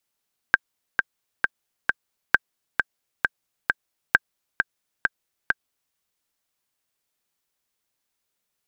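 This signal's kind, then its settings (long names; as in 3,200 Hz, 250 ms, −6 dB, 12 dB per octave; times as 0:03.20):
click track 133 BPM, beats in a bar 4, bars 3, 1,580 Hz, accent 5 dB −1 dBFS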